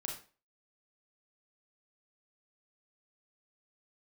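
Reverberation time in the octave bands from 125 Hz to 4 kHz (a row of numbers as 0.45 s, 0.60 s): 0.35 s, 0.40 s, 0.40 s, 0.35 s, 0.35 s, 0.30 s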